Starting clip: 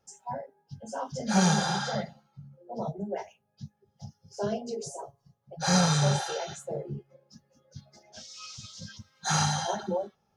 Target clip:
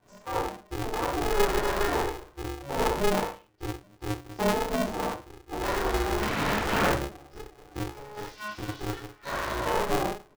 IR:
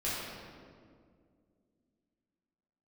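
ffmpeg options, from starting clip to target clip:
-filter_complex "[0:a]asettb=1/sr,asplit=3[s0][s1][s2];[s0]atrim=end=3.204[s3];[s1]atrim=start=3.2:end=4.39,asetpts=PTS-STARTPTS,afade=t=in:d=0.004:c=qsin,afade=t=out:st=1.186:d=0.004:c=qsin,equalizer=f=640:w=0.5:g=-12.5[s4];[s2]atrim=start=4.386[s5];[s3][s4]acrossfade=d=0.004:c1=hsin:c2=qsin[s6];[s6][s5]acrossfade=d=0.004:c1=qsin:c2=hsin,acompressor=threshold=0.0141:ratio=3,asettb=1/sr,asplit=3[s7][s8][s9];[s7]atrim=end=6.204[s10];[s8]atrim=start=6.2:end=6.86,asetpts=PTS-STARTPTS,afade=t=in:d=0.004:c=qsin,afade=t=out:st=0.656:d=0.004:c=qsin,aeval=exprs='0.0376*sin(PI/2*10*val(0)/0.0376)':c=same[s11];[s9]atrim=start=6.856[s12];[s10][s11]acrossfade=d=0.004:c1=hsin:c2=qsin[s13];[s13][s12]acrossfade=d=0.004:c1=qsin:c2=hsin,asettb=1/sr,asplit=3[s14][s15][s16];[s14]atrim=end=8.964[s17];[s15]atrim=start=8.96:end=9.54,asetpts=PTS-STARTPTS,afade=t=in:d=0.004:c=qsin,afade=t=out:st=0.576:d=0.004:c=qsin,equalizer=f=100:w=0.33:g=-11[s18];[s16]atrim=start=9.536[s19];[s17][s18]acrossfade=d=0.004:c1=hsin:c2=qsin[s20];[s20][s19]acrossfade=d=0.004:c1=qsin:c2=hsin,asoftclip=type=tanh:threshold=0.0251,lowpass=1600,asplit=2[s21][s22];[s22]adelay=35,volume=0.376[s23];[s21][s23]amix=inputs=2:normalize=0,aecho=1:1:60|120|180:0.158|0.0539|0.0183[s24];[1:a]atrim=start_sample=2205,afade=t=out:st=0.16:d=0.01,atrim=end_sample=7497[s25];[s24][s25]afir=irnorm=-1:irlink=0,aeval=exprs='val(0)*sgn(sin(2*PI*210*n/s))':c=same,volume=2.82"

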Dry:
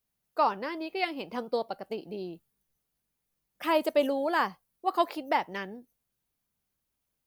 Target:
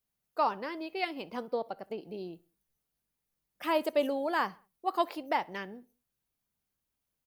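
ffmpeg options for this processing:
-filter_complex "[0:a]asettb=1/sr,asplit=3[s0][s1][s2];[s0]atrim=end=1.484[s3];[s1]atrim=start=1.48:end=2.14,asetpts=PTS-STARTPTS,afade=t=in:d=0.004:c=qsin,afade=t=out:st=0.656:d=0.004:c=qsin,acrossover=split=3000[s4][s5];[s5]acompressor=threshold=0.00141:ratio=4:attack=1:release=60[s6];[s4][s6]amix=inputs=2:normalize=0[s7];[s2]atrim=start=2.136[s8];[s3][s7]acrossfade=d=0.004:c1=hsin:c2=qsin[s9];[s9][s8]acrossfade=d=0.004:c1=qsin:c2=hsin,asplit=2[s10][s11];[s11]adelay=65,lowpass=f=4200:p=1,volume=0.0668,asplit=2[s12][s13];[s13]adelay=65,lowpass=f=4200:p=1,volume=0.46,asplit=2[s14][s15];[s15]adelay=65,lowpass=f=4200:p=1,volume=0.46[s16];[s12][s14][s16]amix=inputs=3:normalize=0[s17];[s10][s17]amix=inputs=2:normalize=0,volume=0.708"

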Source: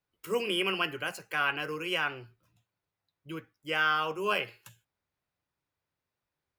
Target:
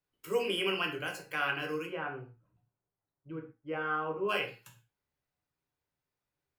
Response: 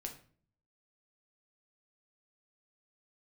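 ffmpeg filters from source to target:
-filter_complex "[0:a]asplit=3[s0][s1][s2];[s0]afade=t=out:st=1.85:d=0.02[s3];[s1]lowpass=1200,afade=t=in:st=1.85:d=0.02,afade=t=out:st=4.28:d=0.02[s4];[s2]afade=t=in:st=4.28:d=0.02[s5];[s3][s4][s5]amix=inputs=3:normalize=0[s6];[1:a]atrim=start_sample=2205,atrim=end_sample=6174[s7];[s6][s7]afir=irnorm=-1:irlink=0"

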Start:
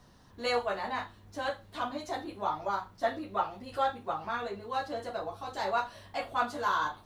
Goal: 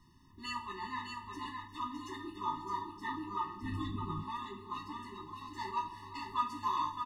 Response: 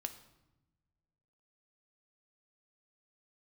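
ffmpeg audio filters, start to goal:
-filter_complex "[0:a]aecho=1:1:353|384|428|612:0.119|0.106|0.112|0.531[s0];[1:a]atrim=start_sample=2205,afade=t=out:st=0.37:d=0.01,atrim=end_sample=16758[s1];[s0][s1]afir=irnorm=-1:irlink=0,asplit=3[s2][s3][s4];[s2]afade=t=out:st=3.62:d=0.02[s5];[s3]asubboost=boost=8:cutoff=230,afade=t=in:st=3.62:d=0.02,afade=t=out:st=4.22:d=0.02[s6];[s4]afade=t=in:st=4.22:d=0.02[s7];[s5][s6][s7]amix=inputs=3:normalize=0,afftfilt=real='re*eq(mod(floor(b*sr/1024/430),2),0)':imag='im*eq(mod(floor(b*sr/1024/430),2),0)':win_size=1024:overlap=0.75,volume=0.841"

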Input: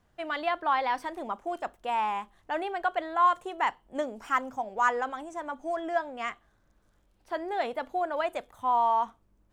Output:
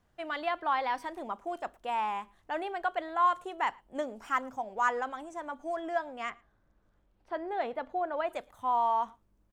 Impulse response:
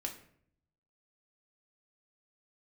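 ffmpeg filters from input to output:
-filter_complex "[0:a]asettb=1/sr,asplit=3[s0][s1][s2];[s0]atrim=end=6.304[s3];[s1]atrim=start=6.3:end=8.29,asetpts=PTS-STARTPTS,afade=t=in:d=0.004:c=qsin,afade=t=out:st=1.986:d=0.004:c=qsin,aemphasis=mode=reproduction:type=75fm[s4];[s2]atrim=start=8.286[s5];[s3][s4]acrossfade=d=0.004:c1=hsin:c2=qsin[s6];[s6][s5]acrossfade=d=0.004:c1=qsin:c2=hsin,asplit=2[s7][s8];[s8]adelay=110.8,volume=0.0447,highshelf=f=4000:g=-2.49[s9];[s7][s9]amix=inputs=2:normalize=0,volume=0.708"

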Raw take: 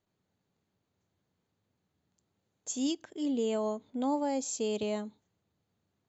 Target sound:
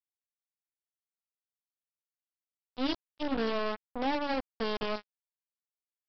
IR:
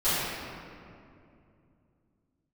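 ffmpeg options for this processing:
-af "bandreject=f=95.27:t=h:w=4,bandreject=f=190.54:t=h:w=4,bandreject=f=285.81:t=h:w=4,bandreject=f=381.08:t=h:w=4,bandreject=f=476.35:t=h:w=4,bandreject=f=571.62:t=h:w=4,bandreject=f=666.89:t=h:w=4,bandreject=f=762.16:t=h:w=4,bandreject=f=857.43:t=h:w=4,bandreject=f=952.7:t=h:w=4,bandreject=f=1047.97:t=h:w=4,bandreject=f=1143.24:t=h:w=4,bandreject=f=1238.51:t=h:w=4,bandreject=f=1333.78:t=h:w=4,bandreject=f=1429.05:t=h:w=4,bandreject=f=1524.32:t=h:w=4,bandreject=f=1619.59:t=h:w=4,aeval=exprs='0.0841*(cos(1*acos(clip(val(0)/0.0841,-1,1)))-cos(1*PI/2))+0.00335*(cos(3*acos(clip(val(0)/0.0841,-1,1)))-cos(3*PI/2))+0.00944*(cos(6*acos(clip(val(0)/0.0841,-1,1)))-cos(6*PI/2))+0.00266*(cos(7*acos(clip(val(0)/0.0841,-1,1)))-cos(7*PI/2))+0.00376*(cos(8*acos(clip(val(0)/0.0841,-1,1)))-cos(8*PI/2))':c=same,aresample=11025,acrusher=bits=4:mix=0:aa=0.5,aresample=44100"

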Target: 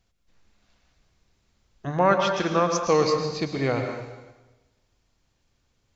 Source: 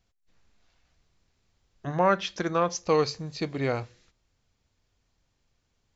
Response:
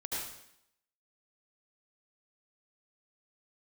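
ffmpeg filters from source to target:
-filter_complex "[0:a]asplit=2[s0][s1];[1:a]atrim=start_sample=2205,asetrate=29547,aresample=44100[s2];[s1][s2]afir=irnorm=-1:irlink=0,volume=0.422[s3];[s0][s3]amix=inputs=2:normalize=0"

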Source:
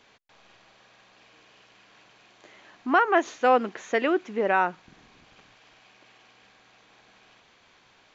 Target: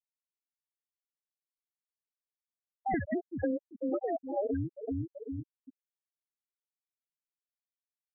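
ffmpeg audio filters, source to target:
-filter_complex "[0:a]afftfilt=real='real(if(between(b,1,1008),(2*floor((b-1)/48)+1)*48-b,b),0)':imag='imag(if(between(b,1,1008),(2*floor((b-1)/48)+1)*48-b,b),0)*if(between(b,1,1008),-1,1)':win_size=2048:overlap=0.75,highshelf=f=2800:g=7.5,asplit=2[s0][s1];[s1]aecho=0:1:383|766|1149|1532|1915:0.2|0.0978|0.0479|0.0235|0.0115[s2];[s0][s2]amix=inputs=2:normalize=0,afftdn=nr=25:nf=-50,acrossover=split=460[s3][s4];[s3]dynaudnorm=f=280:g=5:m=4.47[s5];[s4]bandreject=f=910:w=16[s6];[s5][s6]amix=inputs=2:normalize=0,lowpass=f=5400:w=0.5412,lowpass=f=5400:w=1.3066,lowshelf=f=63:g=-9.5,acompressor=threshold=0.0562:ratio=16,afftfilt=real='re*gte(hypot(re,im),0.141)':imag='im*gte(hypot(re,im),0.141)':win_size=1024:overlap=0.75,volume=0.708"

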